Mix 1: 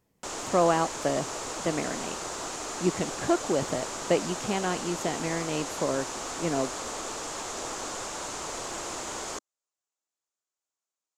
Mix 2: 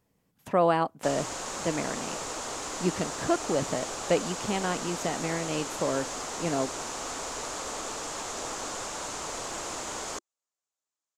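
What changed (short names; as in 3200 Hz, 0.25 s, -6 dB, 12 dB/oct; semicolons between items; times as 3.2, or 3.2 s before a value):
background: entry +0.80 s; master: add bell 360 Hz -3.5 dB 0.21 oct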